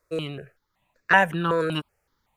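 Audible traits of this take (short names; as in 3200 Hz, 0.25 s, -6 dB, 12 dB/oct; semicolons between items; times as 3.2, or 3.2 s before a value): notches that jump at a steady rate 5.3 Hz 830–3100 Hz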